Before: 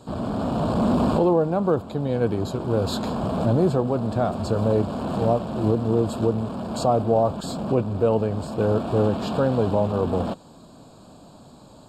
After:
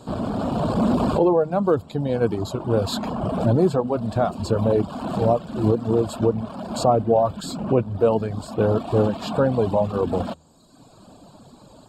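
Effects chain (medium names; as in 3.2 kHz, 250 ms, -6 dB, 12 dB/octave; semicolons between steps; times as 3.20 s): reverb removal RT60 1.2 s; de-hum 78.84 Hz, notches 2; trim +3 dB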